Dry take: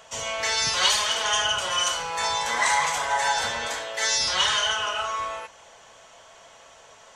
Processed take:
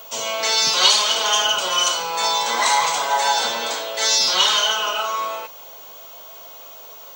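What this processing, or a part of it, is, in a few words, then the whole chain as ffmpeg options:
old television with a line whistle: -af "highpass=f=180:w=0.5412,highpass=f=180:w=1.3066,equalizer=f=370:t=q:w=4:g=4,equalizer=f=1800:t=q:w=4:g=-10,equalizer=f=4100:t=q:w=4:g=5,lowpass=f=8400:w=0.5412,lowpass=f=8400:w=1.3066,aeval=exprs='val(0)+0.00631*sin(2*PI*15625*n/s)':c=same,volume=1.88"

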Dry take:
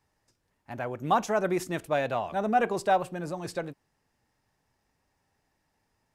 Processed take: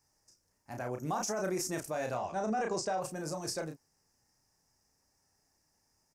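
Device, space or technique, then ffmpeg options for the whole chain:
over-bright horn tweeter: -filter_complex "[0:a]asettb=1/sr,asplit=3[s0][s1][s2];[s0]atrim=end=2.144[s3];[s1]atrim=start=2.14:end=3.02,asetpts=PTS-STARTPTS,afade=t=in:d=0.004:c=qsin,afade=t=out:st=0.876:d=0.004:c=qsin,lowpass=f=7700:w=0.5412,lowpass=f=7700:w=1.3066[s4];[s2]atrim=start=3.016[s5];[s3][s4]acrossfade=d=0.004:c1=hsin:c2=qsin[s6];[s6][s5]acrossfade=d=0.004:c1=qsin:c2=hsin,highshelf=f=4400:t=q:w=3:g=8,asplit=2[s7][s8];[s8]adelay=32,volume=0.562[s9];[s7][s9]amix=inputs=2:normalize=0,alimiter=limit=0.0891:level=0:latency=1:release=44,volume=0.596"

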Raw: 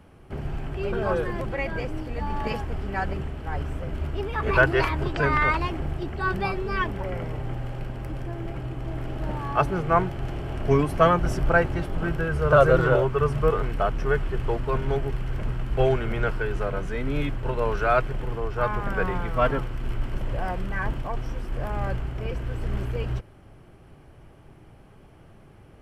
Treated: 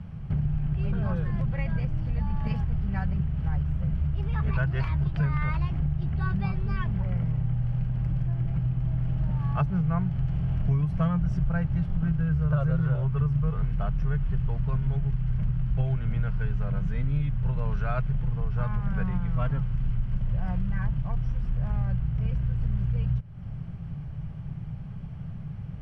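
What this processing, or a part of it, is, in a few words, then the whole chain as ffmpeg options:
jukebox: -af "lowpass=5300,lowshelf=f=230:t=q:w=3:g=12,acompressor=threshold=0.0562:ratio=4"

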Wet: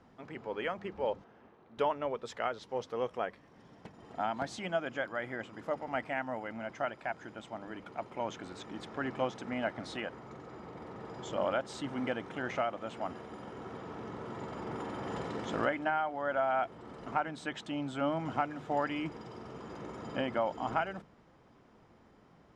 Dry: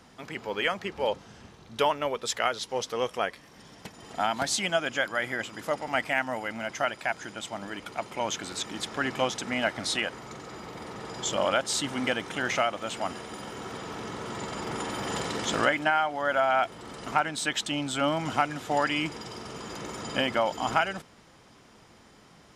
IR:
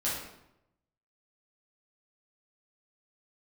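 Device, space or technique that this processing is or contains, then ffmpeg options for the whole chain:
through cloth: -filter_complex "[0:a]lowpass=9300,highshelf=f=2500:g=-18,bandreject=f=50:t=h:w=6,bandreject=f=100:t=h:w=6,bandreject=f=150:t=h:w=6,bandreject=f=200:t=h:w=6,asettb=1/sr,asplit=3[s0][s1][s2];[s0]atrim=end=1.244[s3];[s1]atrim=start=1.24:end=1.78,asetpts=PTS-STARTPTS,afade=t=in:d=0.004:c=qsin,afade=t=out:st=0.536:d=0.004:c=qsin,acrossover=split=240 3100:gain=0.178 1 0.224[s4][s5][s6];[s4][s5][s6]amix=inputs=3:normalize=0[s7];[s2]atrim=start=1.776[s8];[s3][s7]acrossfade=d=0.004:c1=hsin:c2=qsin[s9];[s9][s8]acrossfade=d=0.004:c1=qsin:c2=hsin,volume=0.631"

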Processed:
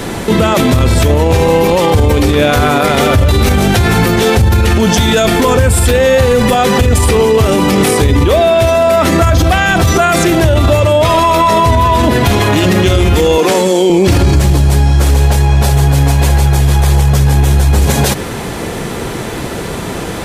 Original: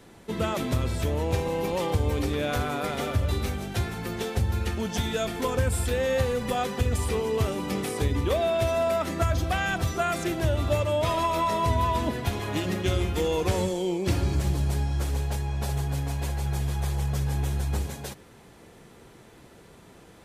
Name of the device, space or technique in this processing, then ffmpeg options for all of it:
loud club master: -filter_complex "[0:a]asettb=1/sr,asplit=3[s0][s1][s2];[s0]atrim=end=13.384[s3];[s1]atrim=start=13.38:end=13.9,asetpts=PTS-STARTPTS,afade=t=in:d=0.004:c=qsin,afade=t=out:st=0.516:d=0.004:c=qsin,highpass=f=200:w=0.5412,highpass=f=200:w=1.3066[s4];[s2]atrim=start=13.896[s5];[s3][s4]acrossfade=d=0.004:c1=hsin:c2=qsin[s6];[s6][s5]acrossfade=d=0.004:c1=qsin:c2=hsin,acompressor=threshold=0.02:ratio=1.5,asoftclip=type=hard:threshold=0.0891,alimiter=level_in=39.8:limit=0.891:release=50:level=0:latency=1,volume=0.891"

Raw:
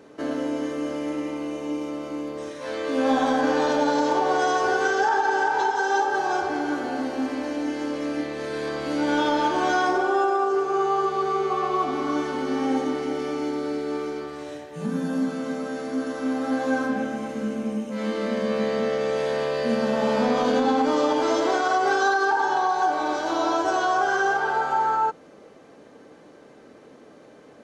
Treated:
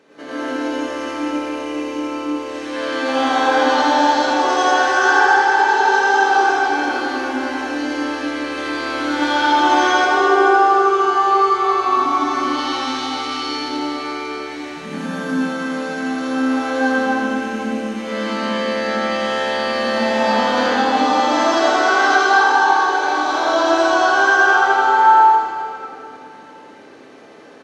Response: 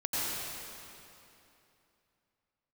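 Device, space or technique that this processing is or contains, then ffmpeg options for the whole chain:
PA in a hall: -filter_complex "[0:a]asettb=1/sr,asplit=3[s0][s1][s2];[s0]atrim=end=12.424[s3];[s1]atrim=start=12.42:end=13.43,asetpts=PTS-STARTPTS,afade=t=in:d=0.004:c=qsin,afade=t=out:st=1.006:d=0.004:c=qsin,equalizer=f=125:t=o:w=1:g=5,equalizer=f=250:t=o:w=1:g=-4,equalizer=f=500:t=o:w=1:g=-10,equalizer=f=2000:t=o:w=1:g=-3,equalizer=f=4000:t=o:w=1:g=11[s4];[s2]atrim=start=13.426[s5];[s3][s4]acrossfade=d=0.004:c1=hsin:c2=qsin[s6];[s6][s5]acrossfade=d=0.004:c1=qsin:c2=hsin,highpass=f=170:p=1,equalizer=f=2700:t=o:w=2.3:g=7.5,aecho=1:1:84:0.562[s7];[1:a]atrim=start_sample=2205[s8];[s7][s8]afir=irnorm=-1:irlink=0,volume=0.596"

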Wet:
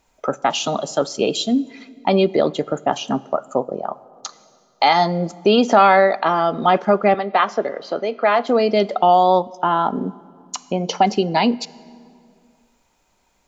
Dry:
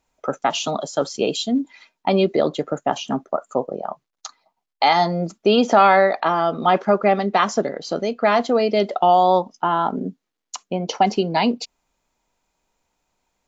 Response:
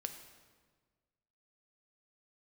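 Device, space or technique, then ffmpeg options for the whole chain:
ducked reverb: -filter_complex "[0:a]asettb=1/sr,asplit=3[s0][s1][s2];[s0]atrim=end=7.144[s3];[s1]atrim=start=7.14:end=8.47,asetpts=PTS-STARTPTS,afade=t=in:d=0.004:c=qsin,afade=t=out:st=1.326:d=0.004:c=qsin,acrossover=split=350 4100:gain=0.251 1 0.0708[s4][s5][s6];[s4][s5][s6]amix=inputs=3:normalize=0[s7];[s2]atrim=start=8.466[s8];[s3][s7]acrossfade=d=0.004:c1=hsin:c2=qsin[s9];[s9][s8]acrossfade=d=0.004:c1=qsin:c2=hsin,asplit=3[s10][s11][s12];[1:a]atrim=start_sample=2205[s13];[s11][s13]afir=irnorm=-1:irlink=0[s14];[s12]apad=whole_len=594375[s15];[s14][s15]sidechaincompress=threshold=0.0126:ratio=3:attack=6.4:release=698,volume=2.24[s16];[s10][s16]amix=inputs=2:normalize=0"

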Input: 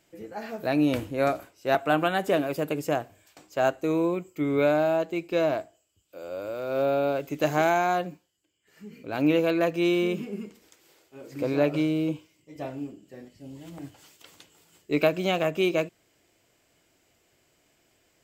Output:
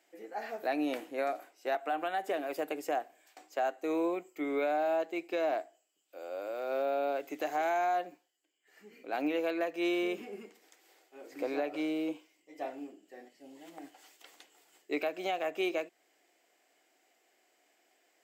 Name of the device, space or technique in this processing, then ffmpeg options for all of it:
laptop speaker: -af "highpass=f=290:w=0.5412,highpass=f=290:w=1.3066,equalizer=f=750:t=o:w=0.21:g=10.5,equalizer=f=1900:t=o:w=0.48:g=5.5,alimiter=limit=0.133:level=0:latency=1:release=258,volume=0.531"

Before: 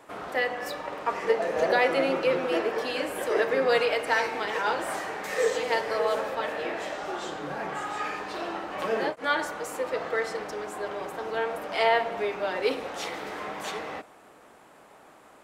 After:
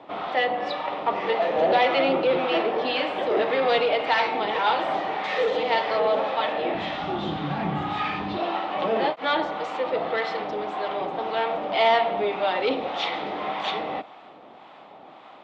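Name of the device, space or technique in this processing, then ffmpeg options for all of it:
guitar amplifier with harmonic tremolo: -filter_complex "[0:a]acrossover=split=730[s0][s1];[s0]aeval=exprs='val(0)*(1-0.5/2+0.5/2*cos(2*PI*1.8*n/s))':c=same[s2];[s1]aeval=exprs='val(0)*(1-0.5/2-0.5/2*cos(2*PI*1.8*n/s))':c=same[s3];[s2][s3]amix=inputs=2:normalize=0,asoftclip=type=tanh:threshold=0.0708,highpass=110,equalizer=f=120:t=q:w=4:g=-3,equalizer=f=440:t=q:w=4:g=-4,equalizer=f=760:t=q:w=4:g=5,equalizer=f=1600:t=q:w=4:g=-8,equalizer=f=3500:t=q:w=4:g=6,lowpass=f=3900:w=0.5412,lowpass=f=3900:w=1.3066,asplit=3[s4][s5][s6];[s4]afade=t=out:st=6.74:d=0.02[s7];[s5]asubboost=boost=9:cutoff=170,afade=t=in:st=6.74:d=0.02,afade=t=out:st=8.37:d=0.02[s8];[s6]afade=t=in:st=8.37:d=0.02[s9];[s7][s8][s9]amix=inputs=3:normalize=0,volume=2.66"

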